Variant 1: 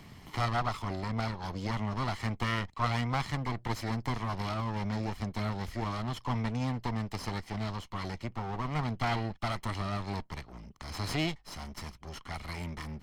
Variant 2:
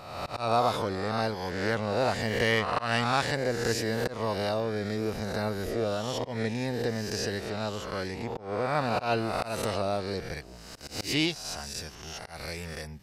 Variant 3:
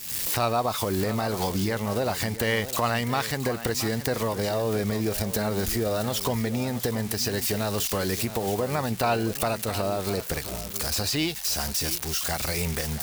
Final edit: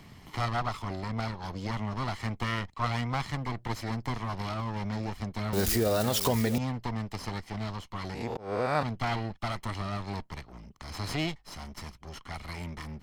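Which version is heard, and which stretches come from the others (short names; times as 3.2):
1
5.53–6.58 from 3
8.15–8.83 from 2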